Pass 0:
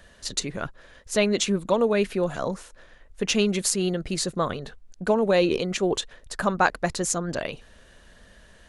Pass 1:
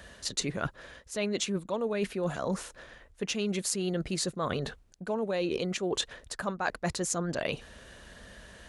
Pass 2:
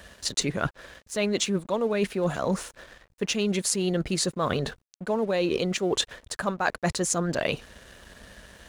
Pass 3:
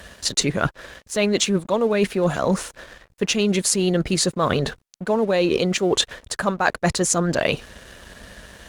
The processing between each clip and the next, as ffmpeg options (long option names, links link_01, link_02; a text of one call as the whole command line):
ffmpeg -i in.wav -af "highpass=42,areverse,acompressor=threshold=-31dB:ratio=12,areverse,volume=3.5dB" out.wav
ffmpeg -i in.wav -af "aeval=exprs='sgn(val(0))*max(abs(val(0))-0.00168,0)':channel_layout=same,volume=5.5dB" out.wav
ffmpeg -i in.wav -af "volume=6dB" -ar 48000 -c:a libopus -b:a 64k out.opus